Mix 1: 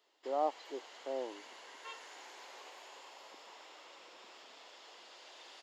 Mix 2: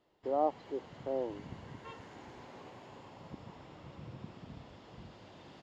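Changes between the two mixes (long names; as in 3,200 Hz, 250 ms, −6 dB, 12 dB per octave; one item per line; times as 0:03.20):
background: remove high-pass filter 370 Hz 24 dB per octave
master: add spectral tilt −4 dB per octave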